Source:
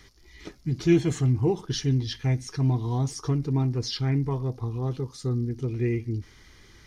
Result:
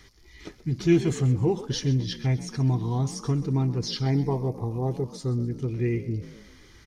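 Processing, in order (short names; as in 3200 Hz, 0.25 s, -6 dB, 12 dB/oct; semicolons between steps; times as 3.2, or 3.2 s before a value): 4.06–5.04 EQ curve 150 Hz 0 dB, 840 Hz +7 dB, 1300 Hz -9 dB, 1900 Hz +1 dB, 3200 Hz -8 dB, 9600 Hz +5 dB; frequency-shifting echo 0.129 s, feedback 46%, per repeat +49 Hz, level -16 dB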